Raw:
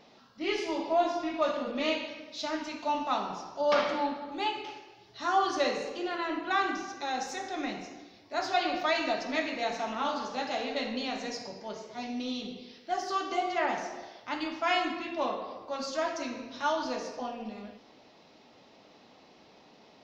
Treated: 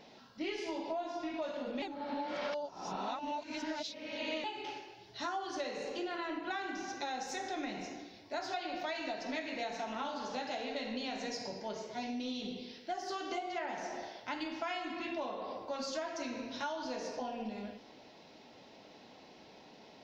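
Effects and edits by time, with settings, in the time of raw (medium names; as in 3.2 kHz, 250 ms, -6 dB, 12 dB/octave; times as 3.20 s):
1.82–4.44 s: reverse
whole clip: band-stop 1.2 kHz, Q 7.2; compression 10:1, threshold -36 dBFS; trim +1 dB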